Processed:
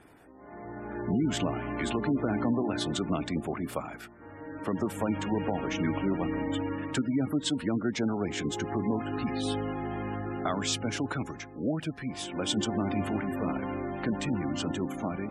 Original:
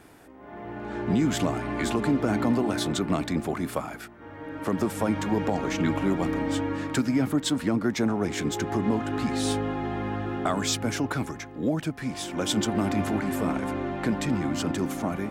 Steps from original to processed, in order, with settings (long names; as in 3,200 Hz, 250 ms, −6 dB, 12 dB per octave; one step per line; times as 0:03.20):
dynamic equaliser 2,900 Hz, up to +5 dB, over −50 dBFS, Q 2.9
echo ahead of the sound 51 ms −23 dB
gate on every frequency bin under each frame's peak −25 dB strong
level −4 dB